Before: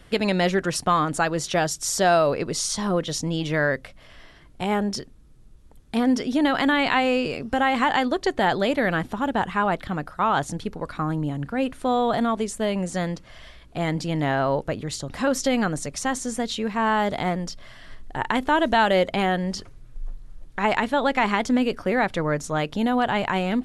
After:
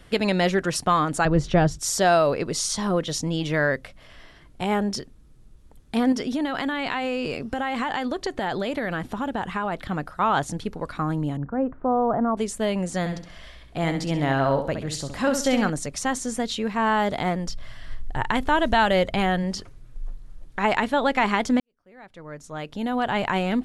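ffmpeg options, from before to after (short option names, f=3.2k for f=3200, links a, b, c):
-filter_complex "[0:a]asettb=1/sr,asplit=3[a][b][c];[a]atrim=end=1.254[d];[b]atrim=start=1.25:end=1.79,asetpts=PTS-STARTPTS,afade=t=in:d=0.004:c=qsin,afade=t=out:st=0.536:d=0.004:c=qsin,aemphasis=mode=reproduction:type=riaa[e];[c]atrim=start=1.786[f];[d][e]acrossfade=d=0.004:c1=hsin:c2=qsin[g];[g][f]acrossfade=d=0.004:c1=qsin:c2=hsin,asettb=1/sr,asplit=3[h][i][j];[h]atrim=end=6.124[k];[i]atrim=start=6.12:end=9.78,asetpts=PTS-STARTPTS,afade=t=in:d=0.004:c=qsin,afade=t=out:st=3.656:d=0.004:c=qsin,acompressor=threshold=-22dB:ratio=6:attack=3.2:release=140:knee=1:detection=peak[l];[j]atrim=start=9.776[m];[k][l]acrossfade=d=0.004:c1=hsin:c2=qsin[n];[n][m]acrossfade=d=0.004:c1=qsin:c2=hsin,asettb=1/sr,asplit=3[o][p][q];[o]atrim=end=11.374[r];[p]atrim=start=11.37:end=12.37,asetpts=PTS-STARTPTS,afade=t=in:d=0.004:c=qsin,afade=t=out:st=0.996:d=0.004:c=qsin,lowpass=f=1.3k:w=0.5412,lowpass=f=1.3k:w=1.3066[s];[q]atrim=start=12.366[t];[r][s]acrossfade=d=0.004:c1=hsin:c2=qsin[u];[u][t]acrossfade=d=0.004:c1=qsin:c2=hsin,asettb=1/sr,asplit=3[v][w][x];[v]atrim=end=12.994[y];[w]atrim=start=12.99:end=15.7,asetpts=PTS-STARTPTS,afade=t=in:d=0.004:c=qsin,afade=t=out:st=2.706:d=0.004:c=qsin,aecho=1:1:66|132|198|264:0.398|0.127|0.0408|0.013,atrim=end_sample=119511[z];[x]atrim=start=15.696[aa];[y][z]acrossfade=d=0.004:c1=hsin:c2=qsin[ab];[ab][aa]acrossfade=d=0.004:c1=qsin:c2=hsin,asplit=3[ac][ad][ae];[ac]afade=t=out:st=17.47:d=0.02[af];[ad]asubboost=boost=2.5:cutoff=150,afade=t=in:st=17.47:d=0.02,afade=t=out:st=19.42:d=0.02[ag];[ae]afade=t=in:st=19.42:d=0.02[ah];[af][ag][ah]amix=inputs=3:normalize=0,asplit=2[ai][aj];[ai]atrim=end=21.6,asetpts=PTS-STARTPTS,afade=t=out:st=21.596:d=0.004:c=hsin[ak];[aj]atrim=start=21.6,asetpts=PTS-STARTPTS,afade=t=in:d=1.64:c=qua[al];[ak][al]concat=n=2:v=0:a=1"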